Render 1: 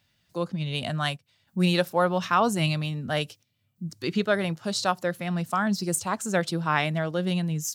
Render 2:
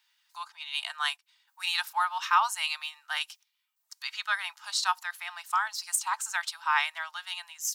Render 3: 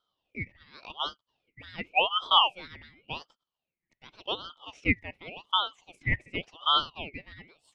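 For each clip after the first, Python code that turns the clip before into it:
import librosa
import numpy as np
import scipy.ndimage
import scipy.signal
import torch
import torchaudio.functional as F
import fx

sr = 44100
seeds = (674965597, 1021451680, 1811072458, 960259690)

y1 = scipy.signal.sosfilt(scipy.signal.butter(12, 830.0, 'highpass', fs=sr, output='sos'), x)
y1 = y1 + 0.31 * np.pad(y1, (int(3.2 * sr / 1000.0), 0))[:len(y1)]
y2 = fx.lowpass_res(y1, sr, hz=950.0, q=1.9)
y2 = fx.ring_lfo(y2, sr, carrier_hz=1600.0, swing_pct=40, hz=0.89)
y2 = y2 * librosa.db_to_amplitude(2.5)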